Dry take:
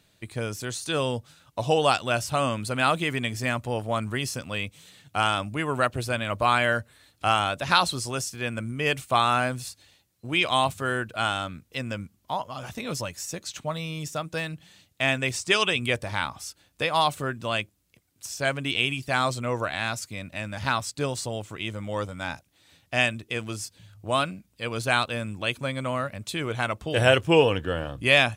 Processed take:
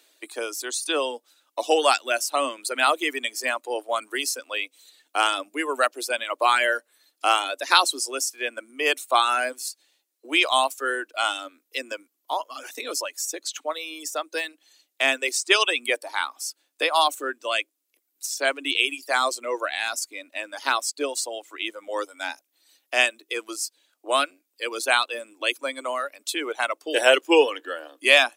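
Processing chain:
reverb reduction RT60 1.8 s
Butterworth high-pass 280 Hz 72 dB per octave
high-shelf EQ 4,900 Hz +6.5 dB
level +2.5 dB

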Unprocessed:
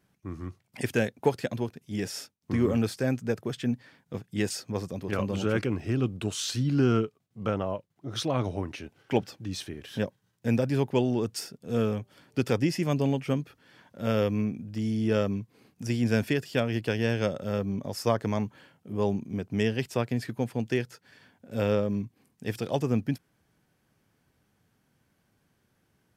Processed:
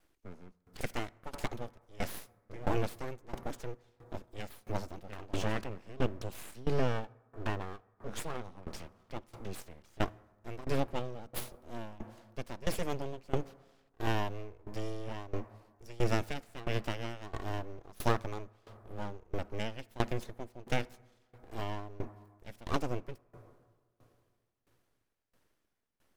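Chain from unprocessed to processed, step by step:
full-wave rectification
convolution reverb RT60 3.4 s, pre-delay 45 ms, DRR 18.5 dB
tremolo with a ramp in dB decaying 1.5 Hz, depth 21 dB
level +1 dB

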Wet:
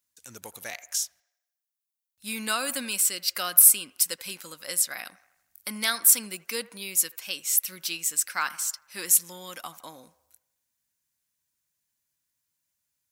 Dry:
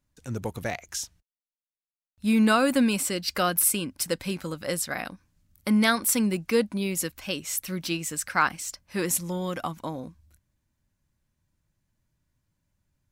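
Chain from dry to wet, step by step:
spectral tilt +4.5 dB per octave
on a send: delay with a band-pass on its return 81 ms, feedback 54%, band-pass 1,000 Hz, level −17 dB
on the sum: level −7.5 dB

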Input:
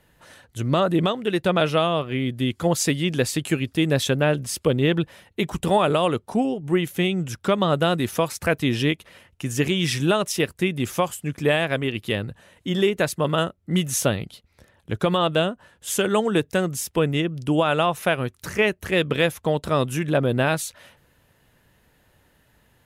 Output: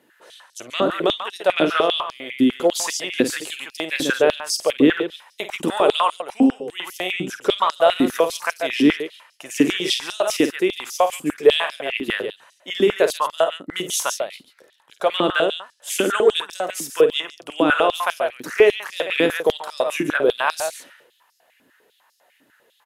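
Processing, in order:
loudspeakers that aren't time-aligned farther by 17 metres −10 dB, 48 metres −9 dB
high-pass on a step sequencer 10 Hz 280–5,200 Hz
level −1 dB

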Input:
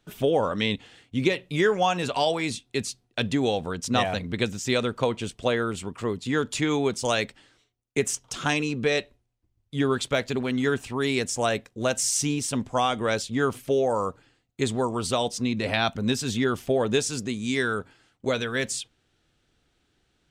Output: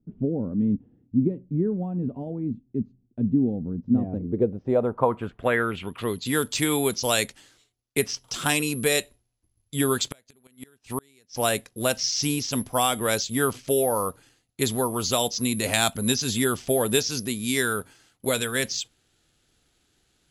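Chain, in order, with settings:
0:09.96–0:11.35: gate with flip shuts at −17 dBFS, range −35 dB
bad sample-rate conversion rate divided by 4×, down filtered, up zero stuff
low-pass filter sweep 240 Hz → 5,700 Hz, 0:03.94–0:06.38

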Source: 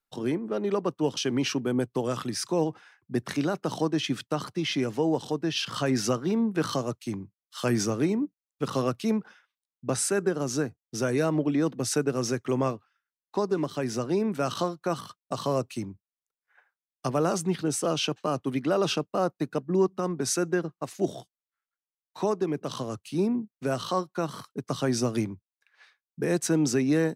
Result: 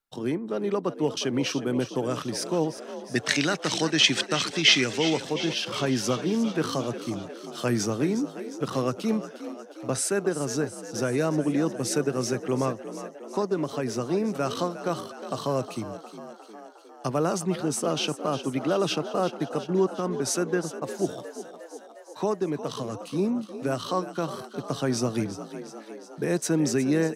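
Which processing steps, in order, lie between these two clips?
0:03.15–0:05.20: flat-topped bell 3,600 Hz +13.5 dB 2.8 octaves
echo with shifted repeats 358 ms, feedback 65%, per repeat +50 Hz, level −12.5 dB

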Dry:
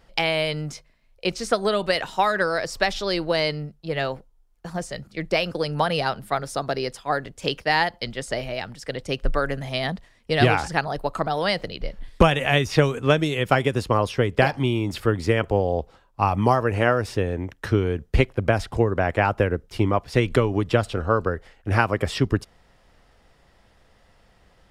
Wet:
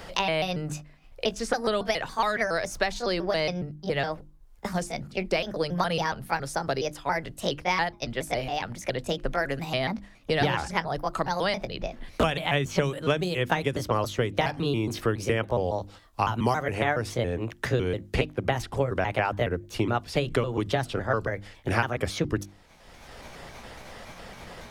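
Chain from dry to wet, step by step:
pitch shifter gated in a rhythm +3 semitones, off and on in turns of 139 ms
mains-hum notches 50/100/150/200/250/300/350 Hz
multiband upward and downward compressor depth 70%
level −4 dB

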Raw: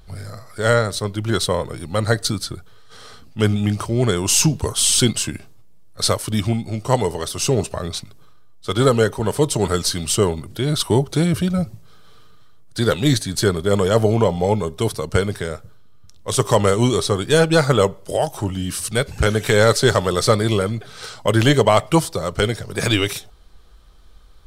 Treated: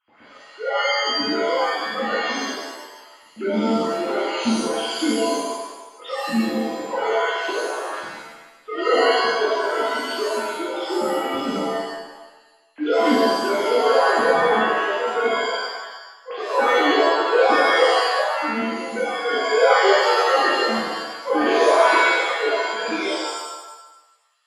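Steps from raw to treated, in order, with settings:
three sine waves on the formant tracks
reverb with rising layers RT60 1 s, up +7 semitones, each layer −2 dB, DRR −8 dB
level −13 dB

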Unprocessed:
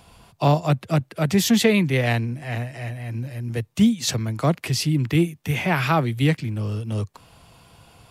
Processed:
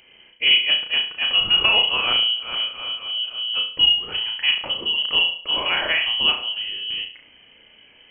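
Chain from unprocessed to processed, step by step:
flutter between parallel walls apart 5.9 metres, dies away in 0.44 s
voice inversion scrambler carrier 3,100 Hz
level −2 dB

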